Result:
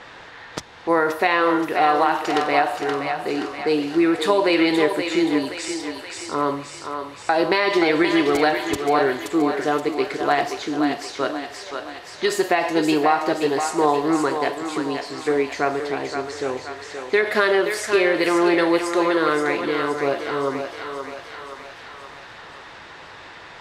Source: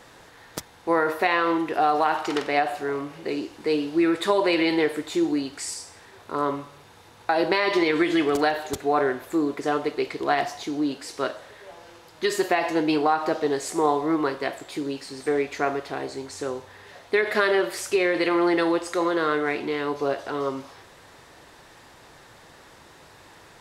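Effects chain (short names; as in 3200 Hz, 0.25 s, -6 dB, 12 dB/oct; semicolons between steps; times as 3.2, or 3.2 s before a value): low-pass opened by the level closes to 2900 Hz, open at -22.5 dBFS; on a send: thinning echo 0.525 s, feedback 51%, high-pass 400 Hz, level -6 dB; on the sum: mismatched tape noise reduction encoder only; gain +3 dB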